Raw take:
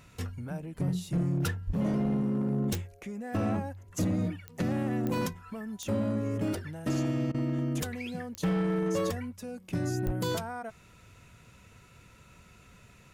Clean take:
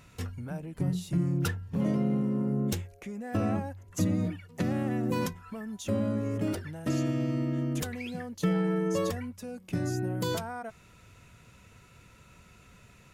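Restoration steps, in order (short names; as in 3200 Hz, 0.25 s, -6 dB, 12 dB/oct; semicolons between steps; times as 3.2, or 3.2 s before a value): clip repair -23.5 dBFS; de-click; de-plosive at 1.66/10.05; interpolate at 7.32, 22 ms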